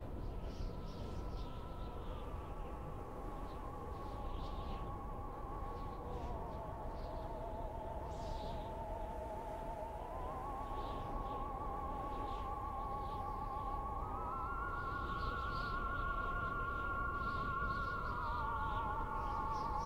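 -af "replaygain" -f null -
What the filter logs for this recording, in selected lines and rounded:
track_gain = +26.3 dB
track_peak = 0.032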